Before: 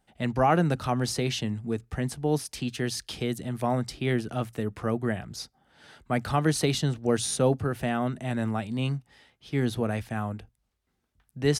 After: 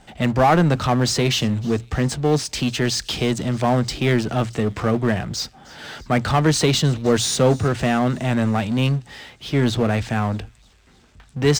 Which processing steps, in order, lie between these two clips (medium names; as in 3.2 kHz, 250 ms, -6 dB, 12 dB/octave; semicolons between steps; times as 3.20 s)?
Chebyshev low-pass 7.9 kHz, order 4; power-law waveshaper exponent 0.7; on a send: feedback echo behind a high-pass 310 ms, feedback 65%, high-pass 3.8 kHz, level -20.5 dB; on the sum: trim +5.5 dB